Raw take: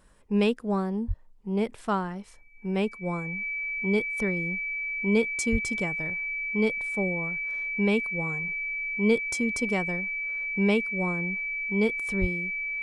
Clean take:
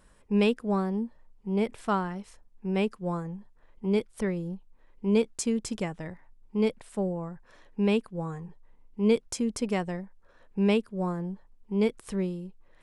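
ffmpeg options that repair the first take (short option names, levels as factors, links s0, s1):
-filter_complex "[0:a]bandreject=f=2300:w=30,asplit=3[s0][s1][s2];[s0]afade=t=out:st=1.07:d=0.02[s3];[s1]highpass=f=140:w=0.5412,highpass=f=140:w=1.3066,afade=t=in:st=1.07:d=0.02,afade=t=out:st=1.19:d=0.02[s4];[s2]afade=t=in:st=1.19:d=0.02[s5];[s3][s4][s5]amix=inputs=3:normalize=0,asplit=3[s6][s7][s8];[s6]afade=t=out:st=5.51:d=0.02[s9];[s7]highpass=f=140:w=0.5412,highpass=f=140:w=1.3066,afade=t=in:st=5.51:d=0.02,afade=t=out:st=5.63:d=0.02[s10];[s8]afade=t=in:st=5.63:d=0.02[s11];[s9][s10][s11]amix=inputs=3:normalize=0,asplit=3[s12][s13][s14];[s12]afade=t=out:st=12.2:d=0.02[s15];[s13]highpass=f=140:w=0.5412,highpass=f=140:w=1.3066,afade=t=in:st=12.2:d=0.02,afade=t=out:st=12.32:d=0.02[s16];[s14]afade=t=in:st=12.32:d=0.02[s17];[s15][s16][s17]amix=inputs=3:normalize=0"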